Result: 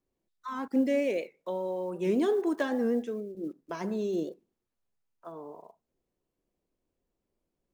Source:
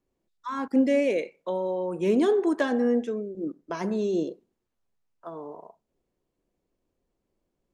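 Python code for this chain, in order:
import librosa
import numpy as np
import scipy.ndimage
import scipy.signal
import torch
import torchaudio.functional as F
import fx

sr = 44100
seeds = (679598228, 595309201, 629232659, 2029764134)

y = fx.block_float(x, sr, bits=7)
y = fx.record_warp(y, sr, rpm=78.0, depth_cents=100.0)
y = y * librosa.db_to_amplitude(-4.5)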